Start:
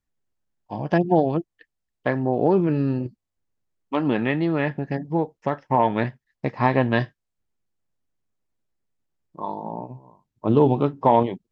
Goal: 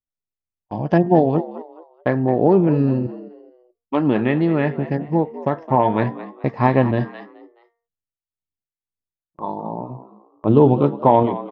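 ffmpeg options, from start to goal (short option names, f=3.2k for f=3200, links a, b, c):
-filter_complex "[0:a]bandreject=f=230.2:t=h:w=4,bandreject=f=460.4:t=h:w=4,bandreject=f=690.6:t=h:w=4,bandreject=f=920.8:t=h:w=4,bandreject=f=1.151k:t=h:w=4,bandreject=f=1.3812k:t=h:w=4,bandreject=f=1.6114k:t=h:w=4,bandreject=f=1.8416k:t=h:w=4,bandreject=f=2.0718k:t=h:w=4,agate=range=-20dB:threshold=-43dB:ratio=16:detection=peak,tiltshelf=f=1.3k:g=3.5,asplit=4[a][b][c][d];[b]adelay=213,afreqshift=80,volume=-15dB[e];[c]adelay=426,afreqshift=160,volume=-24.9dB[f];[d]adelay=639,afreqshift=240,volume=-34.8dB[g];[a][e][f][g]amix=inputs=4:normalize=0,asettb=1/sr,asplit=3[h][i][j];[h]atrim=end=6.914[k];[i]atrim=start=6.91:end=9.42,asetpts=PTS-STARTPTS,afade=t=in:d=0.004:c=qsin,afade=t=out:st=2.506:d=0.004:c=qsin,acrossover=split=610[l][m];[l]aeval=exprs='val(0)*(1-0.7/2+0.7/2*cos(2*PI*1.9*n/s))':c=same[n];[m]aeval=exprs='val(0)*(1-0.7/2-0.7/2*cos(2*PI*1.9*n/s))':c=same[o];[n][o]amix=inputs=2:normalize=0[p];[j]atrim=start=9.416[q];[k][p]acrossfade=d=0.004:c1=hsin:c2=qsin[r];[r][q]acrossfade=d=0.004:c1=qsin:c2=hsin,volume=1.5dB"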